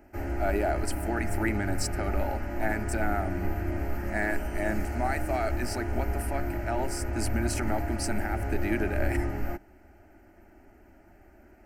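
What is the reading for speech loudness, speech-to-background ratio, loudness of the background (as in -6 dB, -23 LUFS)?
-33.0 LUFS, 0.5 dB, -33.5 LUFS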